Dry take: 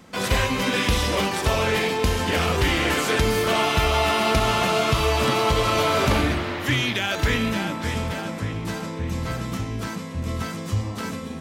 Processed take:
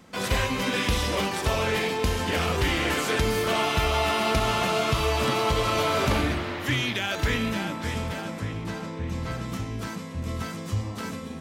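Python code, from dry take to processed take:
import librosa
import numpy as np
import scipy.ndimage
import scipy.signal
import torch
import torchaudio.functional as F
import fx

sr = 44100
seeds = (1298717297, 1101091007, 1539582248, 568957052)

y = fx.high_shelf(x, sr, hz=fx.line((8.63, 6000.0), (9.48, 11000.0)), db=-8.5, at=(8.63, 9.48), fade=0.02)
y = F.gain(torch.from_numpy(y), -3.5).numpy()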